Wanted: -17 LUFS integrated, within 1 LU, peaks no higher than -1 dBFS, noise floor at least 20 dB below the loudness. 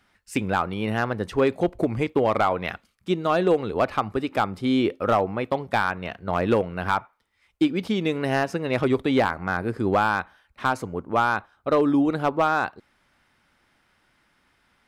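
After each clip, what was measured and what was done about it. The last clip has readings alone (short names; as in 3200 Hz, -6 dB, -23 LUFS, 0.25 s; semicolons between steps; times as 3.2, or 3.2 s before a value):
clipped 0.4%; flat tops at -12.0 dBFS; loudness -24.5 LUFS; peak -12.0 dBFS; loudness target -17.0 LUFS
-> clip repair -12 dBFS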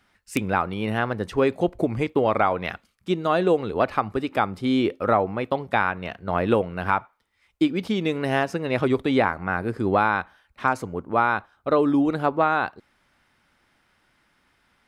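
clipped 0.0%; loudness -24.0 LUFS; peak -3.0 dBFS; loudness target -17.0 LUFS
-> gain +7 dB; limiter -1 dBFS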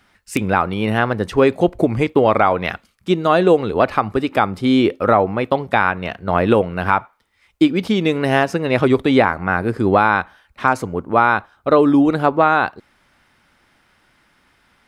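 loudness -17.0 LUFS; peak -1.0 dBFS; noise floor -59 dBFS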